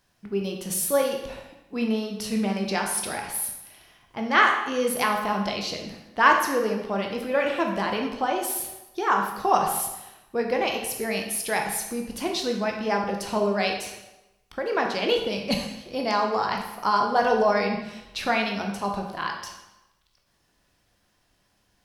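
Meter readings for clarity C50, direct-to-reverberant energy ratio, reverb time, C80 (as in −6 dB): 5.0 dB, 1.5 dB, 1.0 s, 7.5 dB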